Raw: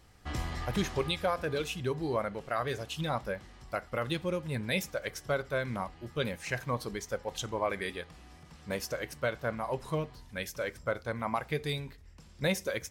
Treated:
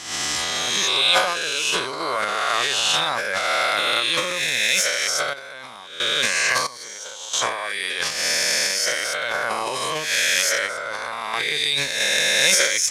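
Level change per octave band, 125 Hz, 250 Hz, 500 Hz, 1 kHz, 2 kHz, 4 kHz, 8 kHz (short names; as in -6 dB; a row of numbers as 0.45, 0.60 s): -7.0, -2.0, +5.0, +11.5, +17.0, +21.5, +24.0 dB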